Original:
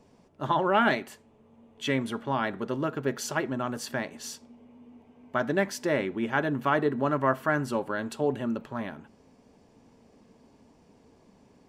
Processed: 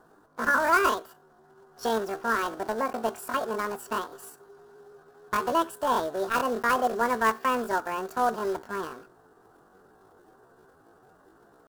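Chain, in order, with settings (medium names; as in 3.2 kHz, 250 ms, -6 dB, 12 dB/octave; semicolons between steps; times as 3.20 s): block-companded coder 3-bit; pitch shift +9 st; resonant high shelf 1.8 kHz -6.5 dB, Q 3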